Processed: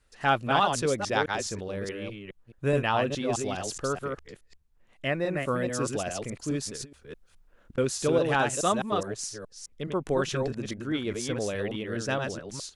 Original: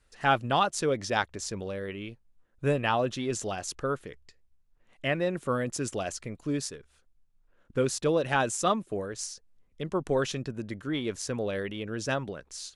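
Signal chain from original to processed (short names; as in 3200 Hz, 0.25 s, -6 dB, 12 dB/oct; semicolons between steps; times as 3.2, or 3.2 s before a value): reverse delay 0.21 s, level -4 dB; 5.09–5.51 bell 3100 Hz -14 dB -> -6.5 dB 0.27 oct; 6.75–7.78 negative-ratio compressor -40 dBFS, ratio -0.5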